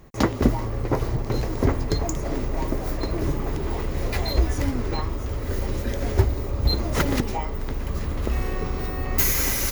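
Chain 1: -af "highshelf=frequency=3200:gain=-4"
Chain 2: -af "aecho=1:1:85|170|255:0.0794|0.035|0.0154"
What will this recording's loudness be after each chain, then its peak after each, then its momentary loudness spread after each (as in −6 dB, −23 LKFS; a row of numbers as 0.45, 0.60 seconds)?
−26.5, −25.5 LKFS; −5.0, −5.0 dBFS; 6, 7 LU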